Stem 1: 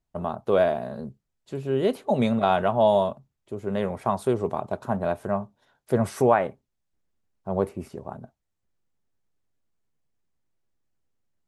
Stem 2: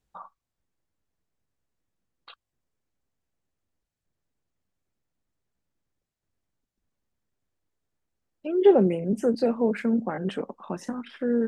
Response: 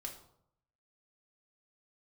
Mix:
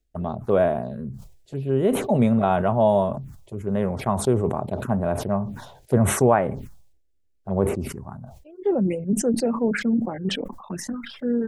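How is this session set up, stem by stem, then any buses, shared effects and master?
−0.5 dB, 0.00 s, no send, no processing
−1.5 dB, 0.00 s, no send, reverb reduction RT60 0.88 s; automatic ducking −20 dB, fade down 0.25 s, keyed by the first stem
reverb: not used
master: low-shelf EQ 250 Hz +8.5 dB; phaser swept by the level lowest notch 160 Hz, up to 4,800 Hz, full sweep at −20 dBFS; level that may fall only so fast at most 69 dB per second

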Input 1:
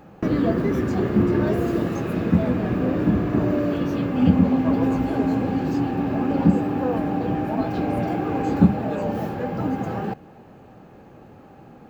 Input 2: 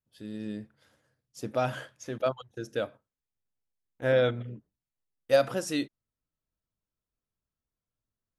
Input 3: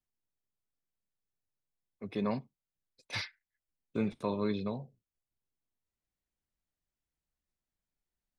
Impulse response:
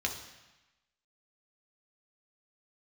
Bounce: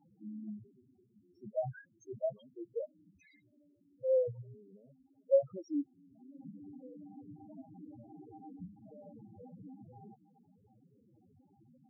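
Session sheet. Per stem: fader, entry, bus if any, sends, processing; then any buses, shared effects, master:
−10.5 dB, 0.00 s, no send, flanger 1.1 Hz, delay 7.1 ms, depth 4.9 ms, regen −43%; downward compressor 4 to 1, threshold −36 dBFS, peak gain reduction 19 dB; high-shelf EQ 5,100 Hz +7 dB; automatic ducking −18 dB, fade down 1.00 s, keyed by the second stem
−2.5 dB, 0.00 s, no send, reverb reduction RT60 0.75 s; high-shelf EQ 4,500 Hz −10.5 dB; spectral peaks only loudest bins 2
−1.0 dB, 0.10 s, no send, bass and treble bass −13 dB, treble +1 dB; tuned comb filter 640 Hz, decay 0.33 s, mix 50%; brickwall limiter −45.5 dBFS, peak gain reduction 17 dB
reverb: not used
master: spectral peaks only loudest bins 4

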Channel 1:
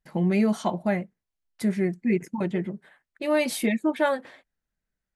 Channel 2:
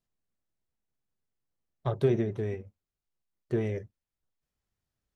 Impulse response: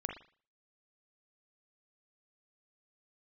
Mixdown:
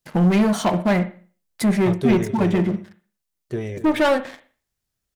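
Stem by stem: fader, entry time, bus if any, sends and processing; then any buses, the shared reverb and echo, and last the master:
−4.5 dB, 0.00 s, muted 0:02.93–0:03.77, send −3.5 dB, no echo send, leveller curve on the samples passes 3
+1.5 dB, 0.00 s, no send, echo send −14 dB, high-shelf EQ 3,400 Hz +9.5 dB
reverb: on, pre-delay 39 ms
echo: single-tap delay 252 ms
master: no processing

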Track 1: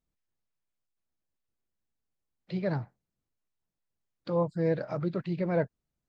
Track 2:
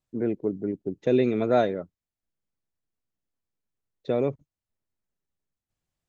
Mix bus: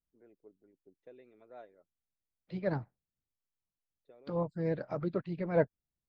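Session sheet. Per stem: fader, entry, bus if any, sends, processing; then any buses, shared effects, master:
+3.0 dB, 0.00 s, no send, high-shelf EQ 3,700 Hz −8 dB
−17.0 dB, 0.00 s, no send, bass and treble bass −14 dB, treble −14 dB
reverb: not used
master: low-shelf EQ 120 Hz +7 dB; harmonic and percussive parts rebalanced harmonic −7 dB; expander for the loud parts 1.5 to 1, over −45 dBFS

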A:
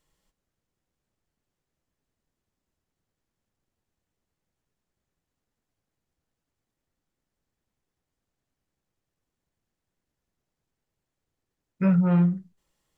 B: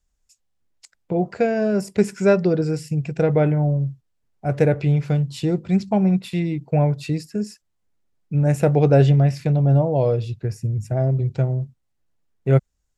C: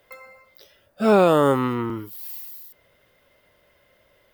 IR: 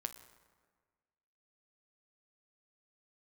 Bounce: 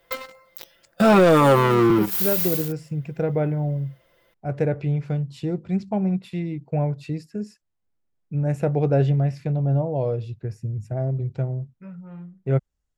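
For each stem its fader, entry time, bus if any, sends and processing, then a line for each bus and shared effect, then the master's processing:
−19.0 dB, 0.00 s, no send, no processing
−5.0 dB, 0.00 s, no send, high-shelf EQ 3,500 Hz −8.5 dB
+2.5 dB, 0.00 s, no send, comb filter 5.9 ms, depth 81%; leveller curve on the samples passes 3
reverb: not used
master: brickwall limiter −9.5 dBFS, peak gain reduction 11.5 dB

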